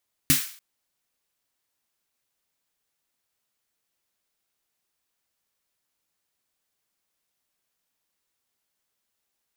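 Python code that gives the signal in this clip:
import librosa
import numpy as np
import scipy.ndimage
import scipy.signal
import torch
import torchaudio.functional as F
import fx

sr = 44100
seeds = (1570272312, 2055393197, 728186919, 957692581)

y = fx.drum_snare(sr, seeds[0], length_s=0.29, hz=150.0, second_hz=270.0, noise_db=3.0, noise_from_hz=1400.0, decay_s=0.16, noise_decay_s=0.47)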